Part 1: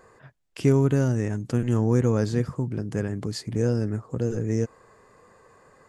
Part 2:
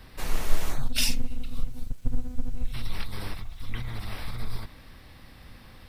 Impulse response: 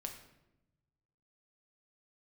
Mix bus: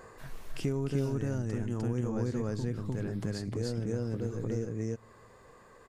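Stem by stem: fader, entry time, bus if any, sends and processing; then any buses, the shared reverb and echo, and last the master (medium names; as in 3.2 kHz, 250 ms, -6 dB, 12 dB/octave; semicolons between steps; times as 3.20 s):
+3.0 dB, 0.00 s, send -17.5 dB, echo send -7 dB, auto duck -11 dB, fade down 0.90 s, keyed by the second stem
-18.5 dB, 0.00 s, no send, no echo send, none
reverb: on, RT60 0.90 s, pre-delay 6 ms
echo: delay 302 ms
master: compression 2.5:1, threshold -32 dBFS, peak gain reduction 11.5 dB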